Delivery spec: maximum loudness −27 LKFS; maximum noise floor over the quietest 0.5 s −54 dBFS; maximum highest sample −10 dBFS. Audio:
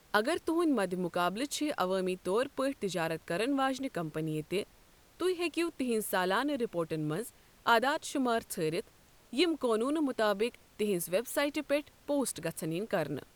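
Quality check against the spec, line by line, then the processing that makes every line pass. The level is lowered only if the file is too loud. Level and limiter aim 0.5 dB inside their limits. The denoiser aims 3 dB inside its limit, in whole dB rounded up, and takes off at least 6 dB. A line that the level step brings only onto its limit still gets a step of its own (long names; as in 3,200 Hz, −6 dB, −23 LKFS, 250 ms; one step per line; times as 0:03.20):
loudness −32.5 LKFS: in spec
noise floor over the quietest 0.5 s −61 dBFS: in spec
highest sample −13.0 dBFS: in spec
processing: no processing needed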